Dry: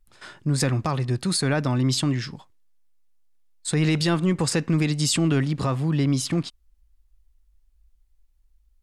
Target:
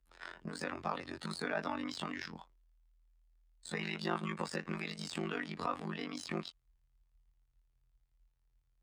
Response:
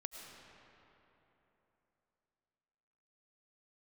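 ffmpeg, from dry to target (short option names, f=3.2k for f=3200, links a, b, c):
-filter_complex "[0:a]acrossover=split=780[a][b];[a]acompressor=threshold=-29dB:ratio=10[c];[b]alimiter=limit=-23.5dB:level=0:latency=1:release=11[d];[c][d]amix=inputs=2:normalize=0,afftfilt=real='hypot(re,im)*cos(PI*b)':imag='0':win_size=2048:overlap=0.75,asplit=2[e][f];[f]highpass=f=720:p=1,volume=13dB,asoftclip=type=tanh:threshold=-12dB[g];[e][g]amix=inputs=2:normalize=0,lowpass=f=1.5k:p=1,volume=-6dB,aeval=exprs='val(0)*sin(2*PI*25*n/s)':c=same,afreqshift=15,volume=-2dB"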